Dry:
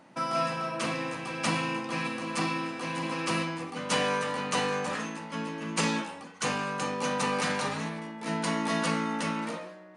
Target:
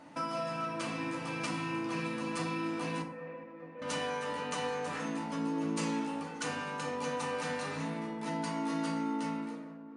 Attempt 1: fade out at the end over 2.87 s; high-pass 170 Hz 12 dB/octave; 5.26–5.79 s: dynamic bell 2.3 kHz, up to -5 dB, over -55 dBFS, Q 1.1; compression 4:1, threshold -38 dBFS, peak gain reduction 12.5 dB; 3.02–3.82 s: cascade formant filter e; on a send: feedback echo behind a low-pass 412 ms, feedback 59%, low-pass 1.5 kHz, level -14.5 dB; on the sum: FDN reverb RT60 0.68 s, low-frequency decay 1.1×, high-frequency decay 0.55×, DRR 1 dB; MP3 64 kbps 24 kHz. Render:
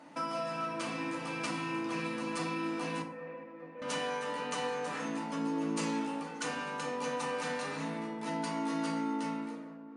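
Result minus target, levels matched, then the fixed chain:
125 Hz band -3.0 dB
fade out at the end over 2.87 s; 5.26–5.79 s: dynamic bell 2.3 kHz, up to -5 dB, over -55 dBFS, Q 1.1; compression 4:1, threshold -38 dBFS, peak gain reduction 13 dB; 3.02–3.82 s: cascade formant filter e; on a send: feedback echo behind a low-pass 412 ms, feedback 59%, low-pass 1.5 kHz, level -14.5 dB; on the sum: FDN reverb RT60 0.68 s, low-frequency decay 1.1×, high-frequency decay 0.55×, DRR 1 dB; MP3 64 kbps 24 kHz

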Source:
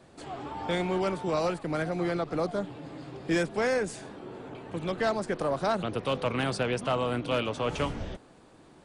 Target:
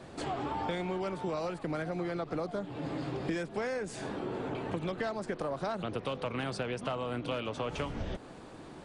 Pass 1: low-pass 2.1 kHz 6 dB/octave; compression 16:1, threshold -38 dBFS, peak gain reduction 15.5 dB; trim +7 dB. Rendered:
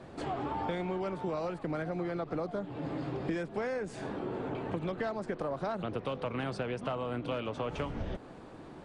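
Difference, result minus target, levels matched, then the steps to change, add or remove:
8 kHz band -7.0 dB
change: low-pass 6.7 kHz 6 dB/octave

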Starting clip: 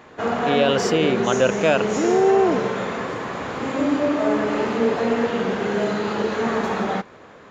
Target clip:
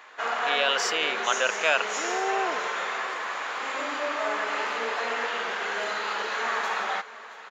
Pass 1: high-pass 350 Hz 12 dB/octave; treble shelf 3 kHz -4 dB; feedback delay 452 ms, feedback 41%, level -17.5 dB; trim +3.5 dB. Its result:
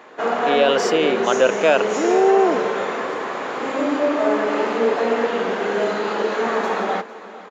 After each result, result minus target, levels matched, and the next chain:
250 Hz band +12.0 dB; echo 224 ms early
high-pass 1.2 kHz 12 dB/octave; treble shelf 3 kHz -4 dB; feedback delay 452 ms, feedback 41%, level -17.5 dB; trim +3.5 dB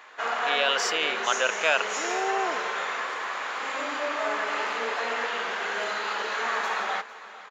echo 224 ms early
high-pass 1.2 kHz 12 dB/octave; treble shelf 3 kHz -4 dB; feedback delay 676 ms, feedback 41%, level -17.5 dB; trim +3.5 dB

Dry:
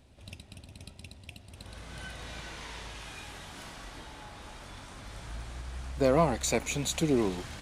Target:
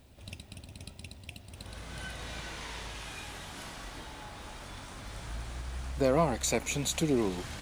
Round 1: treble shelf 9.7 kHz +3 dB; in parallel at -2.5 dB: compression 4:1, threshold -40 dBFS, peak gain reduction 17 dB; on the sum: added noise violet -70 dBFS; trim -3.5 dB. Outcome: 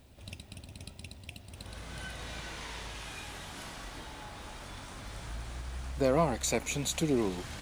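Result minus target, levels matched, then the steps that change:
compression: peak gain reduction +5 dB
change: compression 4:1, threshold -33.5 dBFS, peak gain reduction 12 dB

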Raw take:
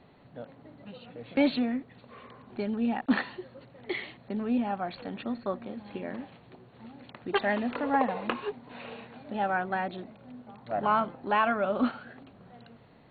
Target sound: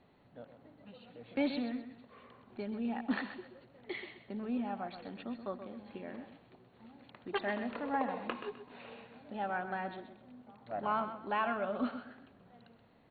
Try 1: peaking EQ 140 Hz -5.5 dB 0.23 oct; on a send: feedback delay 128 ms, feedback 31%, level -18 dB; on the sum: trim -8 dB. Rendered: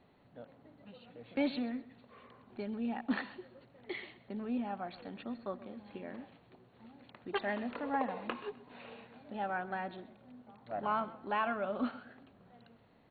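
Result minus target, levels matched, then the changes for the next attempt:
echo-to-direct -7.5 dB
change: feedback delay 128 ms, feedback 31%, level -10.5 dB

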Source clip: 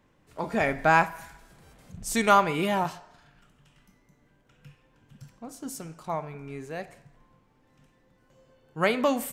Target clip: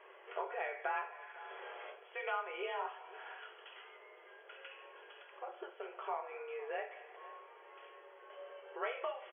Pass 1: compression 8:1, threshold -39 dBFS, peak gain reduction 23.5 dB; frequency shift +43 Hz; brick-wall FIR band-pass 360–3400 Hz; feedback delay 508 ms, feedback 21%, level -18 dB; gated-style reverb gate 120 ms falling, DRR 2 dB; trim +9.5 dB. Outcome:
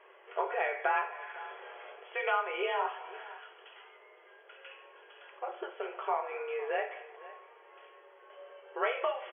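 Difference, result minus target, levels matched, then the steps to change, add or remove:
compression: peak gain reduction -8 dB
change: compression 8:1, threshold -48 dBFS, peak gain reduction 31.5 dB

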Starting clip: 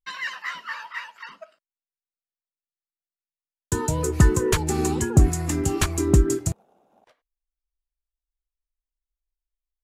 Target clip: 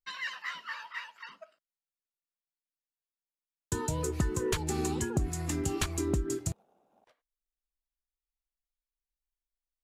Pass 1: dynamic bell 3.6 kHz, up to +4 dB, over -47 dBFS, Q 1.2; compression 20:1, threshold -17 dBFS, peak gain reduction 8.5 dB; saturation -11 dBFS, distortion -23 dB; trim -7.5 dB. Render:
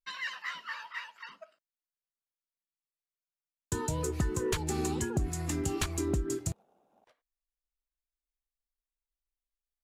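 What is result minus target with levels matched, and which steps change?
saturation: distortion +12 dB
change: saturation -4 dBFS, distortion -35 dB

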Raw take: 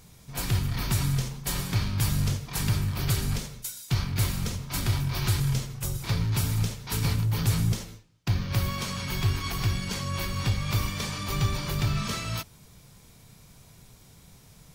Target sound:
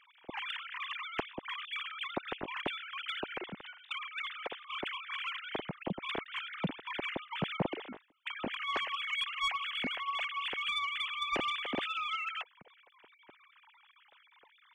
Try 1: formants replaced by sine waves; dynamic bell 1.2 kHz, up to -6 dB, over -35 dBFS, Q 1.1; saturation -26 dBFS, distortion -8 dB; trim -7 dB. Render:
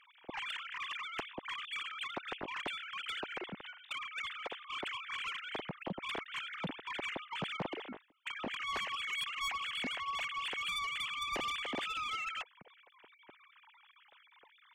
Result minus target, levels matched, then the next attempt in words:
saturation: distortion +7 dB
formants replaced by sine waves; dynamic bell 1.2 kHz, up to -6 dB, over -35 dBFS, Q 1.1; saturation -17.5 dBFS, distortion -15 dB; trim -7 dB

